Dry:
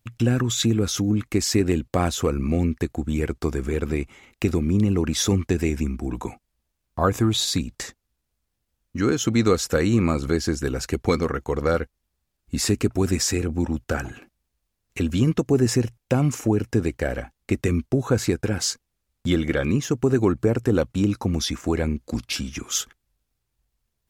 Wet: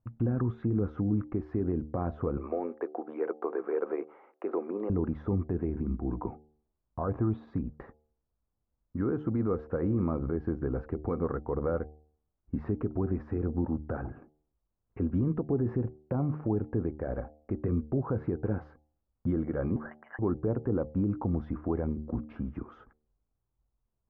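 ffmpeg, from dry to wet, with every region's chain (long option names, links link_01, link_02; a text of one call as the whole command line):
ffmpeg -i in.wav -filter_complex "[0:a]asettb=1/sr,asplit=3[link_01][link_02][link_03];[link_01]atrim=end=2.374[link_04];[link_02]atrim=start=2.37:end=4.9,asetpts=PTS-STARTPTS,afade=type=in:duration=0.004:curve=qsin,afade=type=out:start_time=2.526:duration=0.004:curve=qsin,highpass=frequency=430:width=0.5412,highpass=frequency=430:width=1.3066,acontrast=69[link_05];[link_03]atrim=start=4.896[link_06];[link_04][link_05]acrossfade=duration=0.004:curve1=hsin:curve2=qsin[link_07];[link_07][link_06]acrossfade=duration=0.004:curve1=qsin:curve2=hsin,asettb=1/sr,asplit=3[link_08][link_09][link_10];[link_08]atrim=end=19.764[link_11];[link_09]atrim=start=19.76:end=20.19,asetpts=PTS-STARTPTS,afade=type=in:duration=0.004:curve=qsin,afade=type=out:start_time=0.426:duration=0.004:curve=qsin,highpass=frequency=1600:width_type=q:width=3.9,lowpass=frequency=2800:width_type=q:width=0.5098,lowpass=frequency=2800:width_type=q:width=0.6013,lowpass=frequency=2800:width_type=q:width=0.9,lowpass=frequency=2800:width_type=q:width=2.563,afreqshift=-3300[link_12];[link_10]atrim=start=20.186[link_13];[link_11][link_12]acrossfade=duration=0.004:curve1=hsin:curve2=qsin[link_14];[link_14][link_13]acrossfade=duration=0.004:curve1=qsin:curve2=hsin,alimiter=limit=-15.5dB:level=0:latency=1:release=77,lowpass=frequency=1200:width=0.5412,lowpass=frequency=1200:width=1.3066,bandreject=frequency=75.61:width_type=h:width=4,bandreject=frequency=151.22:width_type=h:width=4,bandreject=frequency=226.83:width_type=h:width=4,bandreject=frequency=302.44:width_type=h:width=4,bandreject=frequency=378.05:width_type=h:width=4,bandreject=frequency=453.66:width_type=h:width=4,bandreject=frequency=529.27:width_type=h:width=4,bandreject=frequency=604.88:width_type=h:width=4,bandreject=frequency=680.49:width_type=h:width=4,bandreject=frequency=756.1:width_type=h:width=4,bandreject=frequency=831.71:width_type=h:width=4,volume=-4dB" out.wav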